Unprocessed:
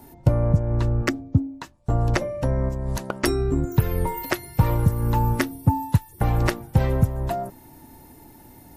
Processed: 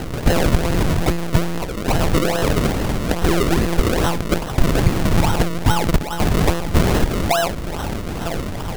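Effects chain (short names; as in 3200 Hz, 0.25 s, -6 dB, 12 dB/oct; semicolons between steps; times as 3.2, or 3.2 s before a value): zero-crossing step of -23 dBFS; low shelf 170 Hz -6 dB; delay with a stepping band-pass 0.479 s, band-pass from 2600 Hz, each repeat -1.4 oct, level -5 dB; monotone LPC vocoder at 8 kHz 170 Hz; decimation with a swept rate 37×, swing 100% 2.4 Hz; gain +5.5 dB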